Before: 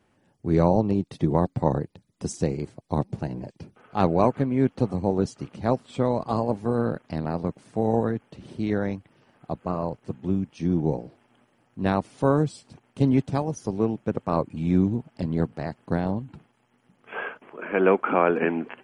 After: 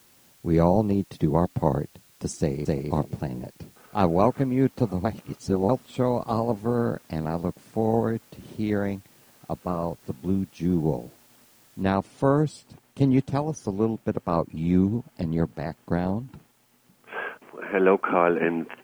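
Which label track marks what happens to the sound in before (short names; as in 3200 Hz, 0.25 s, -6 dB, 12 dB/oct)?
2.390000	2.800000	echo throw 0.26 s, feedback 15%, level -1 dB
5.050000	5.690000	reverse
11.830000	11.830000	noise floor step -58 dB -66 dB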